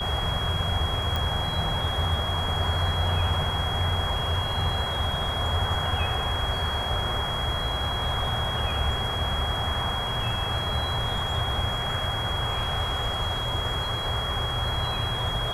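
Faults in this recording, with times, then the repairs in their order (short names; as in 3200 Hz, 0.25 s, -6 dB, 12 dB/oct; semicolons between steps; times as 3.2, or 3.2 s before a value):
tone 3300 Hz -30 dBFS
1.16 pop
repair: de-click; notch 3300 Hz, Q 30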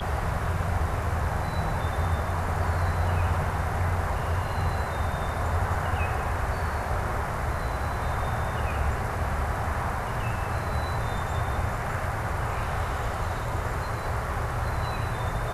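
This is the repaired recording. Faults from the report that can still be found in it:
none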